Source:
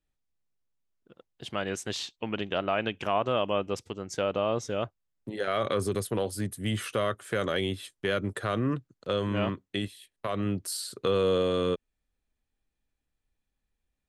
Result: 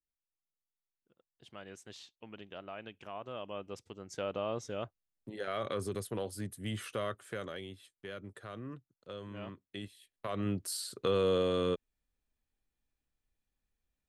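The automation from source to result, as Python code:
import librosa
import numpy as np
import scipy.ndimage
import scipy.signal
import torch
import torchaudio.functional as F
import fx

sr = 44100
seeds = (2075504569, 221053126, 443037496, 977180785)

y = fx.gain(x, sr, db=fx.line((3.15, -17.0), (4.27, -8.0), (7.2, -8.0), (7.66, -16.0), (9.4, -16.0), (10.49, -4.0)))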